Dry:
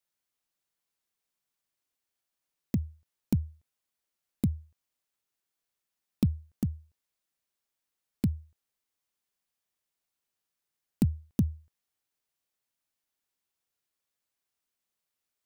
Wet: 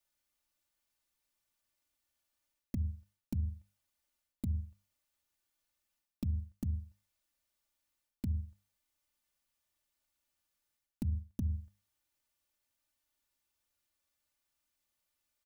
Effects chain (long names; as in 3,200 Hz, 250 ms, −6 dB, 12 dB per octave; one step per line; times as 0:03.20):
low shelf with overshoot 190 Hz +6.5 dB, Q 1.5
mains-hum notches 50/100/150/200 Hz
comb filter 3.4 ms, depth 74%
reversed playback
downward compressor 5 to 1, threshold −33 dBFS, peak gain reduction 14.5 dB
reversed playback